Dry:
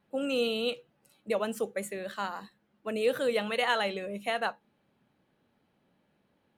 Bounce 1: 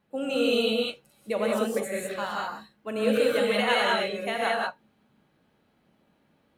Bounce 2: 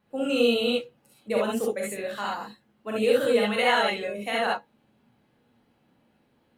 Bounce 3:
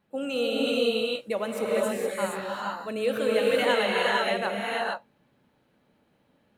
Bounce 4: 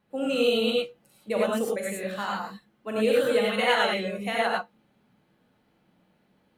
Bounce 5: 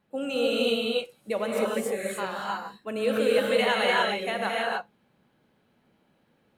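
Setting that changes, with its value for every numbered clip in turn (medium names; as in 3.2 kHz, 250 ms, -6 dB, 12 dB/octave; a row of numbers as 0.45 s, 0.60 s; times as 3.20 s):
gated-style reverb, gate: 220 ms, 90 ms, 490 ms, 130 ms, 330 ms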